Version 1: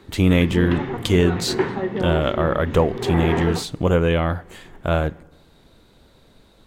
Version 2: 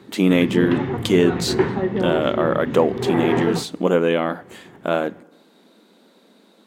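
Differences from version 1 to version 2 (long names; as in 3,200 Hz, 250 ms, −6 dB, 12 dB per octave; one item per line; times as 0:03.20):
speech: add linear-phase brick-wall high-pass 180 Hz
master: add low-shelf EQ 360 Hz +5.5 dB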